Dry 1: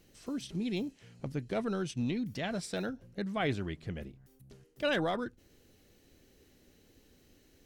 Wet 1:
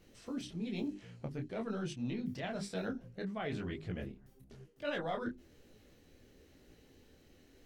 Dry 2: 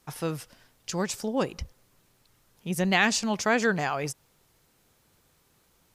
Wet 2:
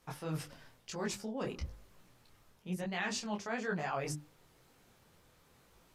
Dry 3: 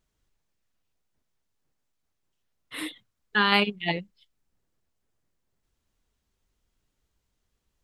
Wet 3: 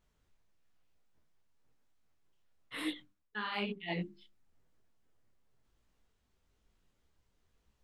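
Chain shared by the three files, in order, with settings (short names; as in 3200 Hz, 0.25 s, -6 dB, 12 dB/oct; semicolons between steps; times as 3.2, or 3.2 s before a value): high shelf 4500 Hz -8 dB; notches 50/100/150/200/250/300/350/400 Hz; reverse; compressor 5:1, threshold -38 dBFS; reverse; detuned doubles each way 36 cents; gain +6 dB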